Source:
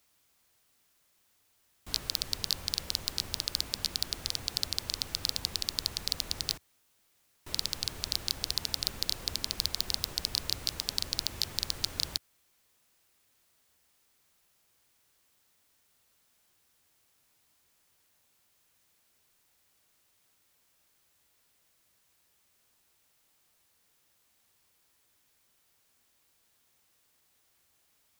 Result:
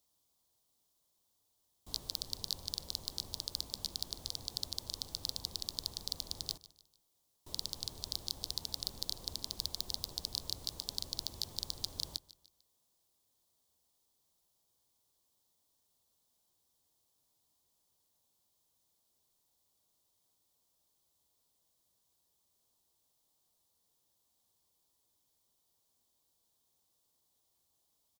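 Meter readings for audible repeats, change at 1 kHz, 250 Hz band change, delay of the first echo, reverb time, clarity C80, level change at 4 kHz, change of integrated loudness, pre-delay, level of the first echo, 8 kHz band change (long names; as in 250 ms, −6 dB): 3, −8.5 dB, −7.0 dB, 149 ms, no reverb audible, no reverb audible, −7.0 dB, −7.0 dB, no reverb audible, −19.0 dB, −7.0 dB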